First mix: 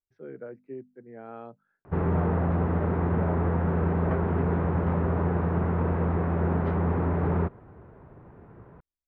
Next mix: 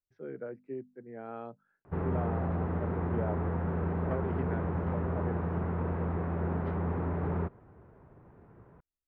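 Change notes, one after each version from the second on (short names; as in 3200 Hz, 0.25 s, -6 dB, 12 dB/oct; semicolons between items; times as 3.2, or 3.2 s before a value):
background -6.5 dB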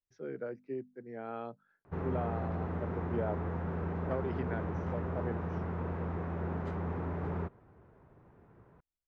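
background -4.5 dB; master: remove air absorption 300 m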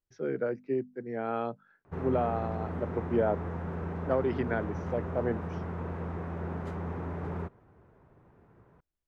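speech +8.5 dB; background: remove air absorption 85 m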